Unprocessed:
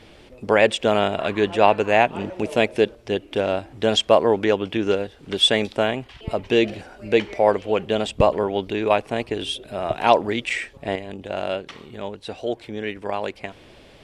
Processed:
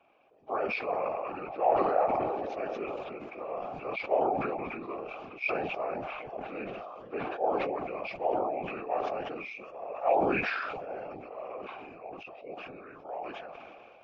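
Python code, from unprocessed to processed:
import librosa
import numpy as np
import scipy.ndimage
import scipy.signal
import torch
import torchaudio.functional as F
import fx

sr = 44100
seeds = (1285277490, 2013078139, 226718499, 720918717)

y = fx.partial_stretch(x, sr, pct=86)
y = fx.vowel_filter(y, sr, vowel='a')
y = fx.whisperise(y, sr, seeds[0])
y = fx.sustainer(y, sr, db_per_s=24.0)
y = y * 10.0 ** (-2.5 / 20.0)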